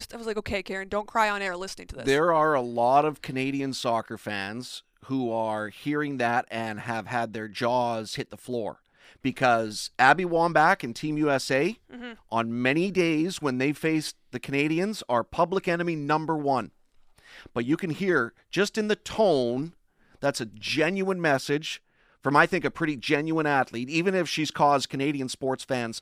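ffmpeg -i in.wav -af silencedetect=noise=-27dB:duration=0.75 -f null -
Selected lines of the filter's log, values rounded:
silence_start: 16.62
silence_end: 17.56 | silence_duration: 0.94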